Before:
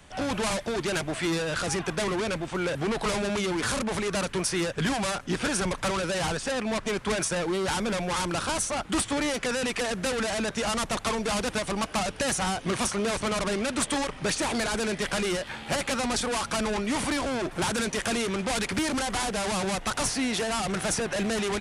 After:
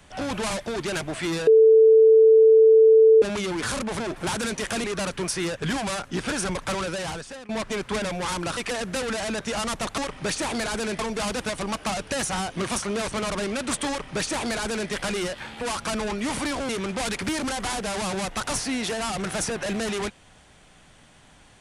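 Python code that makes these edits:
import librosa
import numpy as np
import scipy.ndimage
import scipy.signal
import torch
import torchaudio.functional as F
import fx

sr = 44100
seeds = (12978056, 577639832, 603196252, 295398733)

y = fx.edit(x, sr, fx.bleep(start_s=1.47, length_s=1.75, hz=443.0, db=-10.5),
    fx.fade_out_to(start_s=6.01, length_s=0.64, floor_db=-18.0),
    fx.cut(start_s=7.18, length_s=0.72),
    fx.cut(start_s=8.45, length_s=1.22),
    fx.duplicate(start_s=13.98, length_s=1.01, to_s=11.08),
    fx.cut(start_s=15.7, length_s=0.57),
    fx.move(start_s=17.35, length_s=0.84, to_s=4.0), tone=tone)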